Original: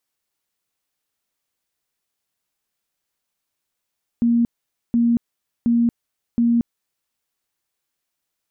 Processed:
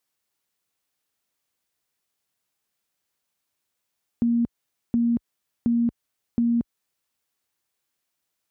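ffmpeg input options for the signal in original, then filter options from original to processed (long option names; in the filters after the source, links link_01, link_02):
-f lavfi -i "aevalsrc='0.211*sin(2*PI*235*mod(t,0.72))*lt(mod(t,0.72),54/235)':duration=2.88:sample_rate=44100"
-af "highpass=43,acompressor=threshold=-21dB:ratio=3"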